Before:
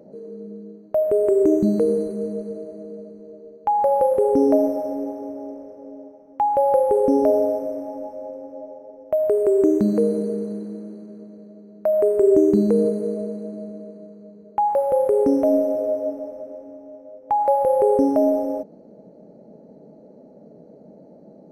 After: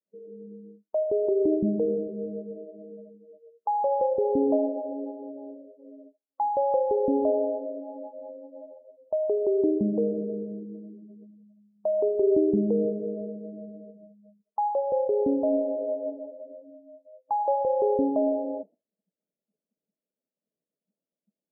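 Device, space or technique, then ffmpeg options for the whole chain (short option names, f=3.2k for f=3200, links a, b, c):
hearing-loss simulation: -af "lowpass=2.1k,agate=range=-33dB:threshold=-40dB:ratio=3:detection=peak,afftdn=nr=36:nf=-29,volume=-6.5dB"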